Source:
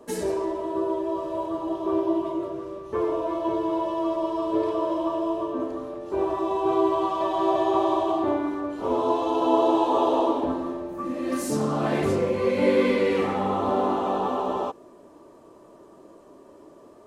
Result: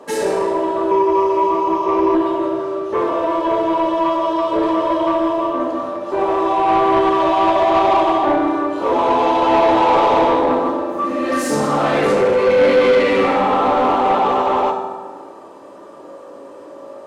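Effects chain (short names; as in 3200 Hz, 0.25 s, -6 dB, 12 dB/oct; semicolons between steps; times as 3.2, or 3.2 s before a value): reverb RT60 1.5 s, pre-delay 3 ms, DRR 0.5 dB; overdrive pedal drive 19 dB, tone 3400 Hz, clips at -5 dBFS; 0.91–2.15 ripple EQ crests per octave 0.8, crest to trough 10 dB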